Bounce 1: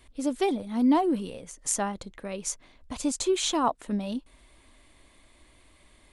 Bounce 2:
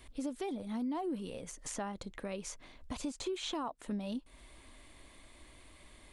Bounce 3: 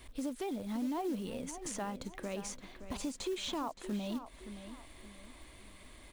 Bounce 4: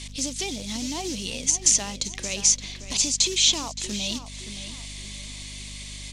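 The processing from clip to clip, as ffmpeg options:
-filter_complex "[0:a]acrossover=split=4000[a][b];[b]acompressor=threshold=-41dB:ratio=4:attack=1:release=60[c];[a][c]amix=inputs=2:normalize=0,alimiter=limit=-22.5dB:level=0:latency=1:release=265,acompressor=threshold=-42dB:ratio=2,volume=1dB"
-filter_complex "[0:a]asplit=2[a][b];[b]alimiter=level_in=11.5dB:limit=-24dB:level=0:latency=1,volume=-11.5dB,volume=-2dB[c];[a][c]amix=inputs=2:normalize=0,acrusher=bits=5:mode=log:mix=0:aa=0.000001,asplit=2[d][e];[e]adelay=570,lowpass=f=4.2k:p=1,volume=-11dB,asplit=2[f][g];[g]adelay=570,lowpass=f=4.2k:p=1,volume=0.38,asplit=2[h][i];[i]adelay=570,lowpass=f=4.2k:p=1,volume=0.38,asplit=2[j][k];[k]adelay=570,lowpass=f=4.2k:p=1,volume=0.38[l];[d][f][h][j][l]amix=inputs=5:normalize=0,volume=-3dB"
-af "aexciter=amount=3.1:drive=9.1:freq=2.1k,lowpass=f=6.2k:t=q:w=2.3,aeval=exprs='val(0)+0.00708*(sin(2*PI*50*n/s)+sin(2*PI*2*50*n/s)/2+sin(2*PI*3*50*n/s)/3+sin(2*PI*4*50*n/s)/4+sin(2*PI*5*50*n/s)/5)':c=same,volume=3dB"

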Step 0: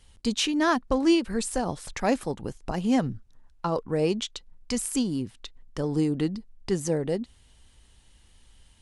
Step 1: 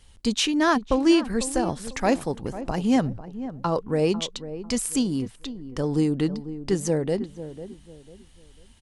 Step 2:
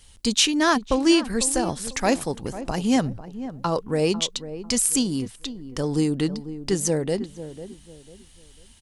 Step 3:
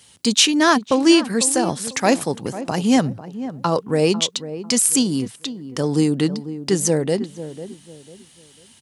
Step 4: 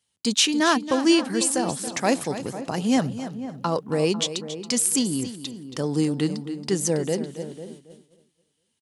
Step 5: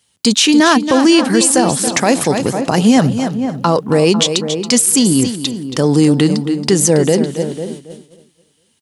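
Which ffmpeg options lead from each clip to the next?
-filter_complex "[0:a]asplit=2[a][b];[b]adelay=497,lowpass=f=960:p=1,volume=-12dB,asplit=2[c][d];[d]adelay=497,lowpass=f=960:p=1,volume=0.33,asplit=2[e][f];[f]adelay=497,lowpass=f=960:p=1,volume=0.33[g];[a][c][e][g]amix=inputs=4:normalize=0,volume=2.5dB"
-af "highshelf=f=3.2k:g=9"
-af "highpass=f=110:w=0.5412,highpass=f=110:w=1.3066,volume=4.5dB"
-af "agate=range=-20dB:threshold=-38dB:ratio=16:detection=peak,aecho=1:1:276|552:0.237|0.0403,volume=-5dB"
-af "alimiter=level_in=15.5dB:limit=-1dB:release=50:level=0:latency=1,volume=-1dB"

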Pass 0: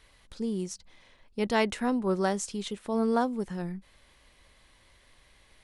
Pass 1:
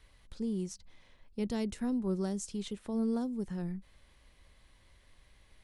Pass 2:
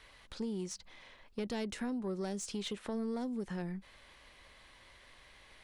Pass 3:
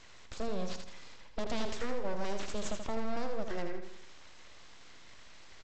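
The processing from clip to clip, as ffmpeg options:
-filter_complex "[0:a]lowshelf=f=200:g=8,acrossover=split=410|4200[a][b][c];[b]acompressor=threshold=-39dB:ratio=6[d];[a][d][c]amix=inputs=3:normalize=0,volume=-6dB"
-filter_complex "[0:a]acompressor=threshold=-36dB:ratio=6,asplit=2[a][b];[b]highpass=f=720:p=1,volume=15dB,asoftclip=type=tanh:threshold=-27dB[c];[a][c]amix=inputs=2:normalize=0,lowpass=f=3.6k:p=1,volume=-6dB,volume=1dB"
-af "aresample=16000,aeval=exprs='abs(val(0))':c=same,aresample=44100,aecho=1:1:81|162|243|324|405|486:0.447|0.21|0.0987|0.0464|0.0218|0.0102,volume=4.5dB"

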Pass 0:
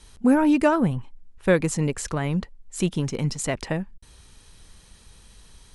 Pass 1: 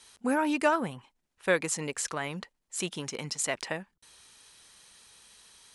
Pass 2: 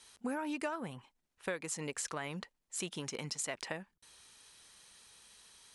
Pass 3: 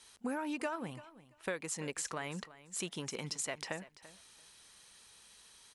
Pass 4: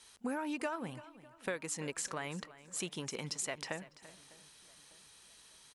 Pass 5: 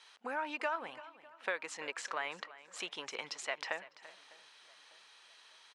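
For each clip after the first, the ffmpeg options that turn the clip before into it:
-af "highpass=f=990:p=1"
-af "acompressor=threshold=-31dB:ratio=6,volume=-3.5dB"
-af "aecho=1:1:338|676:0.141|0.024"
-filter_complex "[0:a]asplit=2[a][b];[b]adelay=601,lowpass=f=2.1k:p=1,volume=-22dB,asplit=2[c][d];[d]adelay=601,lowpass=f=2.1k:p=1,volume=0.53,asplit=2[e][f];[f]adelay=601,lowpass=f=2.1k:p=1,volume=0.53,asplit=2[g][h];[h]adelay=601,lowpass=f=2.1k:p=1,volume=0.53[i];[a][c][e][g][i]amix=inputs=5:normalize=0"
-af "highpass=690,lowpass=3.6k,volume=5dB"

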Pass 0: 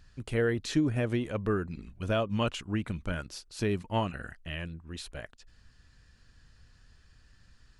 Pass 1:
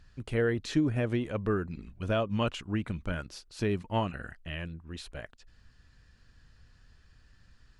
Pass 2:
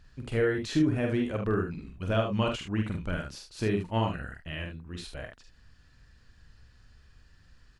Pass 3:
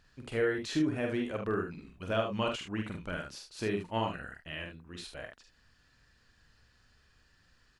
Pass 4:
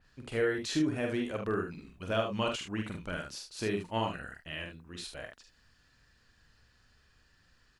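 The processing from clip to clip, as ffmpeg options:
-af "highshelf=f=6.1k:g=-7"
-af "aecho=1:1:45|74:0.596|0.422"
-af "lowshelf=f=170:g=-11.5,volume=-1.5dB"
-af "adynamicequalizer=threshold=0.00316:dfrequency=3700:dqfactor=0.7:tfrequency=3700:tqfactor=0.7:attack=5:release=100:ratio=0.375:range=2.5:mode=boostabove:tftype=highshelf"

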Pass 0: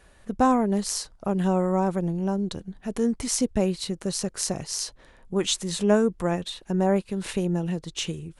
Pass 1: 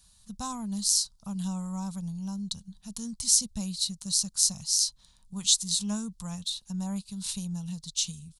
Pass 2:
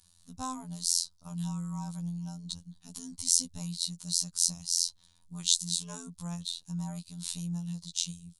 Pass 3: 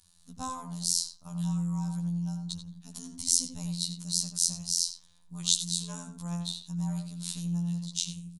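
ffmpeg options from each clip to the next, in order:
-af "firequalizer=gain_entry='entry(210,0);entry(320,-26);entry(980,-4);entry(1800,-14);entry(4000,13)':delay=0.05:min_phase=1,volume=-7.5dB"
-af "afftfilt=real='hypot(re,im)*cos(PI*b)':imag='0':win_size=2048:overlap=0.75"
-filter_complex "[0:a]asplit=2[a][b];[b]adelay=87,lowpass=f=2k:p=1,volume=-4dB,asplit=2[c][d];[d]adelay=87,lowpass=f=2k:p=1,volume=0.25,asplit=2[e][f];[f]adelay=87,lowpass=f=2k:p=1,volume=0.25[g];[a][c][e][g]amix=inputs=4:normalize=0"

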